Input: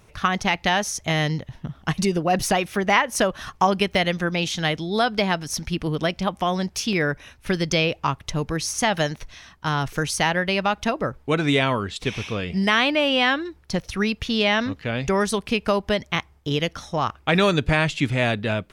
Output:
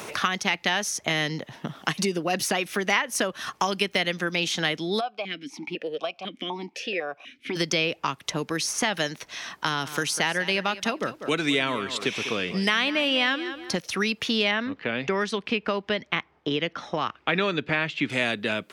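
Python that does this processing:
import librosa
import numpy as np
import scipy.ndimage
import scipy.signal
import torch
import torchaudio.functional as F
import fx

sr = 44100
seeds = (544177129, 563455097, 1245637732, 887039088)

y = fx.vowel_held(x, sr, hz=4.0, at=(4.99, 7.55), fade=0.02)
y = fx.echo_feedback(y, sr, ms=196, feedback_pct=18, wet_db=-15.5, at=(9.8, 13.79), fade=0.02)
y = fx.lowpass(y, sr, hz=2600.0, slope=12, at=(14.51, 18.1))
y = scipy.signal.sosfilt(scipy.signal.butter(2, 270.0, 'highpass', fs=sr, output='sos'), y)
y = fx.dynamic_eq(y, sr, hz=730.0, q=0.86, threshold_db=-35.0, ratio=4.0, max_db=-7)
y = fx.band_squash(y, sr, depth_pct=70)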